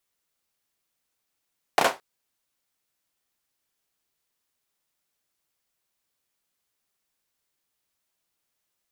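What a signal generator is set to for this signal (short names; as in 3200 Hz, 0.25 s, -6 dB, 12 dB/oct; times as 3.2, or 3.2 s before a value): hand clap length 0.22 s, bursts 3, apart 32 ms, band 710 Hz, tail 0.22 s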